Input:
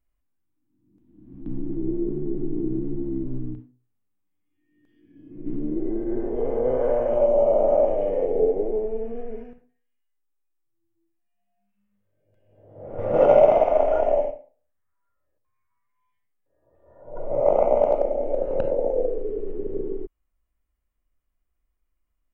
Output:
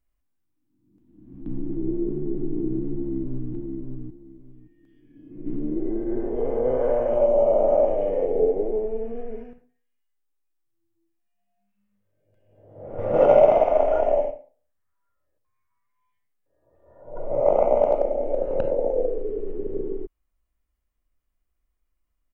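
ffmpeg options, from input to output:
-filter_complex "[0:a]asplit=2[a][b];[b]afade=t=in:st=2.94:d=0.01,afade=t=out:st=3.53:d=0.01,aecho=0:1:570|1140|1710:0.595662|0.119132|0.0238265[c];[a][c]amix=inputs=2:normalize=0"

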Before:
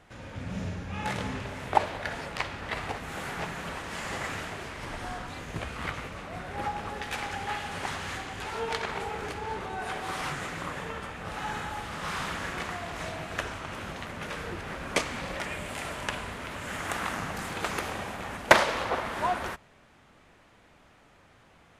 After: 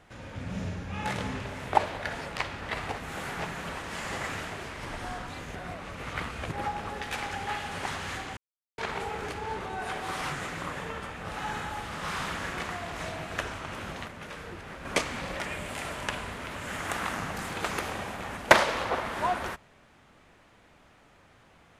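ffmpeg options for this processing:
-filter_complex "[0:a]asplit=7[a][b][c][d][e][f][g];[a]atrim=end=5.552[h];[b]atrim=start=5.548:end=6.522,asetpts=PTS-STARTPTS,areverse[i];[c]atrim=start=6.518:end=8.37,asetpts=PTS-STARTPTS,afade=t=out:st=1.848:d=0.004:c=hsin[j];[d]atrim=start=8.37:end=8.78,asetpts=PTS-STARTPTS,volume=0[k];[e]atrim=start=8.78:end=14.082,asetpts=PTS-STARTPTS,afade=t=in:d=0.004:c=hsin[l];[f]atrim=start=14.078:end=14.852,asetpts=PTS-STARTPTS,volume=-5dB[m];[g]atrim=start=14.848[n];[h][i]acrossfade=d=0.004:c1=hsin:c2=hsin[o];[j][k][l]concat=n=3:v=0:a=1[p];[o][p]acrossfade=d=0.004:c1=hsin:c2=hsin[q];[q][m]acrossfade=d=0.004:c1=hsin:c2=hsin[r];[r][n]acrossfade=d=0.004:c1=hsin:c2=hsin"

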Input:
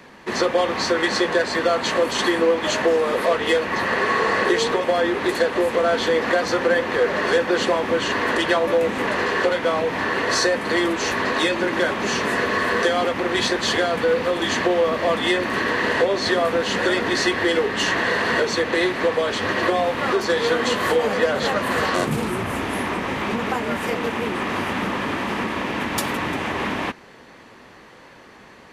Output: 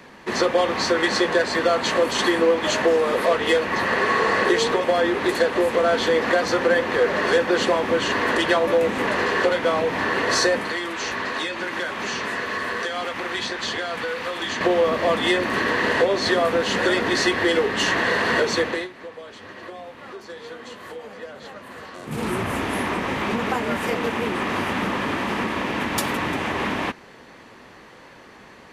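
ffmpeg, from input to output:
-filter_complex "[0:a]asettb=1/sr,asplit=3[a][b][c];[a]atrim=end=10.624[d];[b]atrim=start=10.62:end=14.61,asetpts=PTS-STARTPTS,afade=t=in:d=0.004:c=qsin,afade=t=out:st=3.986:d=0.004:c=qsin,acrossover=split=860|7200[e][f][g];[e]acompressor=threshold=-33dB:ratio=4[h];[f]acompressor=threshold=-26dB:ratio=4[i];[g]acompressor=threshold=-54dB:ratio=4[j];[h][i][j]amix=inputs=3:normalize=0[k];[c]atrim=start=14.606[l];[d][k]acrossfade=d=0.004:c1=hsin:c2=qsin[m];[m][l]acrossfade=d=0.004:c1=qsin:c2=hsin,asplit=3[n][o][p];[n]atrim=end=18.88,asetpts=PTS-STARTPTS,afade=t=out:st=18.62:d=0.26:silence=0.133352[q];[o]atrim=start=18.88:end=22.03,asetpts=PTS-STARTPTS,volume=-17.5dB[r];[p]atrim=start=22.03,asetpts=PTS-STARTPTS,afade=t=in:d=0.26:silence=0.133352[s];[q][r][s]concat=n=3:v=0:a=1"

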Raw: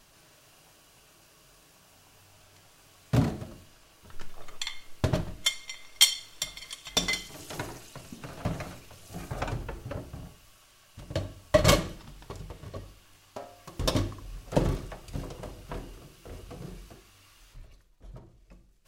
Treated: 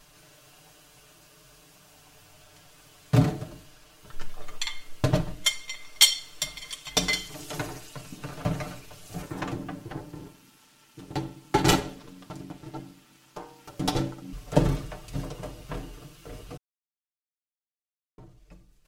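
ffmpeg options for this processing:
-filter_complex "[0:a]asettb=1/sr,asplit=3[a][b][c];[a]atrim=end=9.224[d];[b]atrim=start=9.22:end=14.33,asetpts=PTS-STARTPTS,afade=t=in:d=0.004:c=qsin,afade=t=out:st=5.106:d=0.004:c=qsin,aeval=exprs='val(0)*sin(2*PI*230*n/s)':c=same[e];[c]atrim=start=14.326[f];[d][e]acrossfade=d=0.004:c1=hsin:c2=qsin[g];[g][f]acrossfade=d=0.004:c1=qsin:c2=hsin,asplit=3[h][i][j];[h]atrim=end=16.57,asetpts=PTS-STARTPTS,afade=t=out:st=16.566:d=0.004:c=hsin[k];[i]atrim=start=16.57:end=18.18,asetpts=PTS-STARTPTS,volume=0[l];[j]atrim=start=18.18,asetpts=PTS-STARTPTS,afade=t=in:d=0.004:c=hsin[m];[k][l][m]concat=n=3:v=0:a=1,aecho=1:1:6.7:0.68,volume=1.5dB"

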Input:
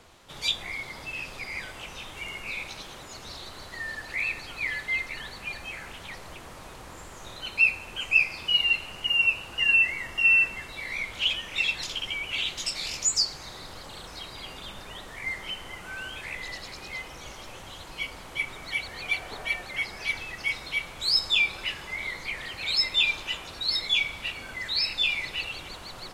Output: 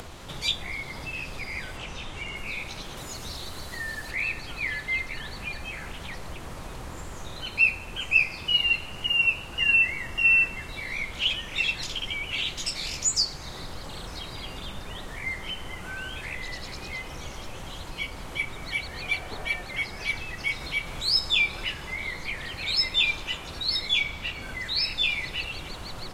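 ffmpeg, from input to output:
-filter_complex "[0:a]asettb=1/sr,asplit=3[a][b][c];[a]atrim=end=1.774[d];[b]atrim=start=1.77:end=2.36,asetpts=PTS-STARTPTS,afade=t=in:d=0.004:c=qsin,afade=t=out:st=0.586:d=0.004:c=qsin,lowpass=8.4k[e];[c]atrim=start=2.356[f];[d][e]acrossfade=d=0.004:c1=hsin:c2=qsin[g];[g][f]acrossfade=d=0.004:c1=qsin:c2=hsin,asettb=1/sr,asplit=3[h][i][j];[h]atrim=end=2.974[k];[i]atrim=start=2.97:end=4.11,asetpts=PTS-STARTPTS,afade=t=in:d=0.004:c=qsin,afade=t=out:st=1.136:d=0.004:c=qsin,highshelf=f=7.5k:g=10[l];[j]atrim=start=4.106[m];[k][l]acrossfade=d=0.004:c1=hsin:c2=qsin[n];[n][m]acrossfade=d=0.004:c1=qsin:c2=hsin,asplit=3[o][p][q];[o]afade=t=out:st=20.59:d=0.02[r];[p]acompressor=mode=upward:threshold=-32dB:ratio=2.5:attack=3.2:release=140:knee=2.83:detection=peak,afade=t=in:st=20.59:d=0.02,afade=t=out:st=21.72:d=0.02[s];[q]afade=t=in:st=21.72:d=0.02[t];[r][s][t]amix=inputs=3:normalize=0,asettb=1/sr,asplit=3[u][v][w];[u]atrim=end=24.014[x];[v]atrim=start=24.01:end=24.42,asetpts=PTS-STARTPTS,afade=t=in:d=0.004:c=qsin,afade=t=out:st=0.406:d=0.004:c=qsin,equalizer=f=10k:w=3.6:g=-9[y];[w]atrim=start=24.416[z];[x][y]acrossfade=d=0.004:c1=hsin:c2=qsin[aa];[aa][z]acrossfade=d=0.004:c1=qsin:c2=hsin,lowshelf=f=250:g=8.5,bandreject=f=50:t=h:w=6,bandreject=f=100:t=h:w=6,acompressor=mode=upward:threshold=-32dB:ratio=2.5"

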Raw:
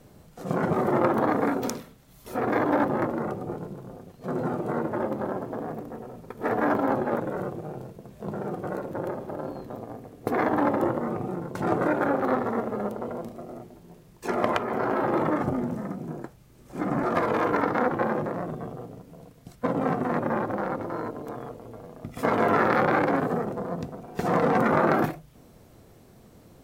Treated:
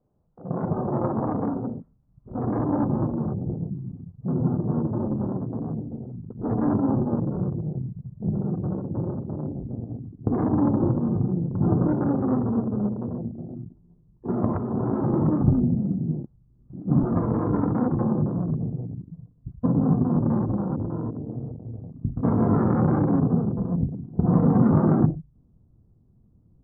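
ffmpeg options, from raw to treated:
-filter_complex "[0:a]asplit=3[a][b][c];[a]afade=t=out:st=16.23:d=0.02[d];[b]acompressor=threshold=-41dB:ratio=4:attack=3.2:release=140:knee=1:detection=peak,afade=t=in:st=16.23:d=0.02,afade=t=out:st=16.87:d=0.02[e];[c]afade=t=in:st=16.87:d=0.02[f];[d][e][f]amix=inputs=3:normalize=0,afwtdn=0.0251,asubboost=boost=9:cutoff=190,lowpass=f=1.1k:w=0.5412,lowpass=f=1.1k:w=1.3066,volume=-2.5dB"

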